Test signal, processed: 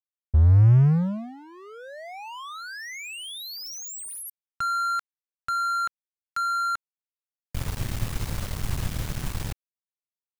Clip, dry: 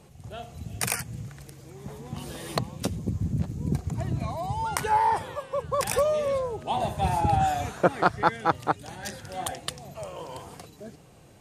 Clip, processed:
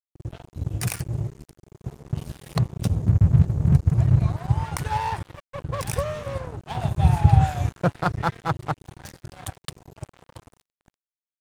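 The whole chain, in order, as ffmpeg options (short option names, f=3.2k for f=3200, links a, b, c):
-af "lowshelf=f=190:t=q:w=1.5:g=12.5,aeval=exprs='sgn(val(0))*max(abs(val(0))-0.0316,0)':c=same,volume=-1dB"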